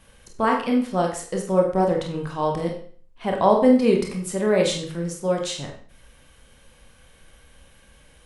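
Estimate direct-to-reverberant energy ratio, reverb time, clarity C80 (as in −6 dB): 0.5 dB, 0.50 s, 10.5 dB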